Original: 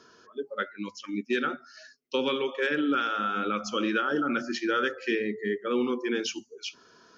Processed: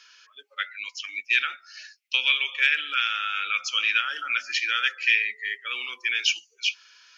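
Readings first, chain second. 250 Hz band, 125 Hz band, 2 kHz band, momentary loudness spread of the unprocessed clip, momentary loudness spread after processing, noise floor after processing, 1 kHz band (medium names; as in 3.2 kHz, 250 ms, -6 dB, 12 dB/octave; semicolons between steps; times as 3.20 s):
under -30 dB, under -35 dB, +8.5 dB, 12 LU, 12 LU, -64 dBFS, -2.5 dB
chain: resonant high-pass 2.4 kHz, resonance Q 3.5; trim +5 dB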